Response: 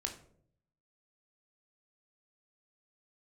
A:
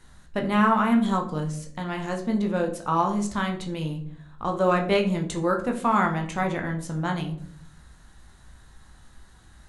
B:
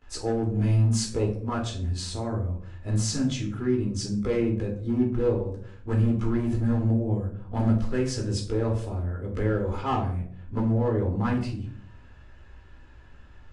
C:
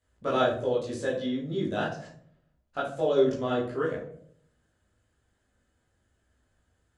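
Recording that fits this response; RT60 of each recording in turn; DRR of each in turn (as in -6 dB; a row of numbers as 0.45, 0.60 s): A; 0.60, 0.60, 0.60 s; 2.5, -16.5, -7.5 dB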